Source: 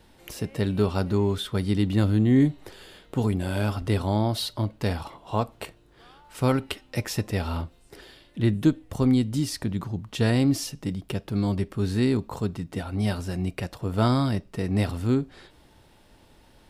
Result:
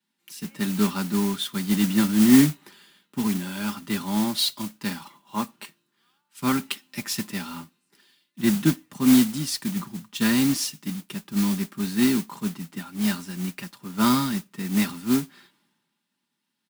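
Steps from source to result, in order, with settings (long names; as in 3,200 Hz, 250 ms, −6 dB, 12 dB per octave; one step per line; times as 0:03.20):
high-pass filter 170 Hz 24 dB per octave
flat-topped bell 540 Hz −13 dB 1.2 octaves
notch filter 1,100 Hz, Q 29
comb filter 5 ms, depth 49%
noise that follows the level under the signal 12 dB
multiband upward and downward expander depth 70%
level +2 dB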